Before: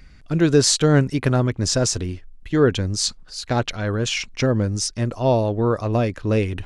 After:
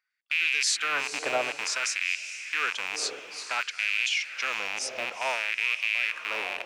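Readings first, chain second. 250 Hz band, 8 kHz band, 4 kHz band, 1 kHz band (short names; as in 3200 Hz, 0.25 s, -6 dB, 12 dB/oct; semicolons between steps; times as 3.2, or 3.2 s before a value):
-30.0 dB, -7.5 dB, -4.0 dB, -5.5 dB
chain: rattling part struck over -28 dBFS, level -11 dBFS; gate with hold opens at -33 dBFS; on a send: diffused feedback echo 0.452 s, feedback 45%, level -11 dB; on the sum: LFO high-pass sine 0.56 Hz 660–2400 Hz; gain -8.5 dB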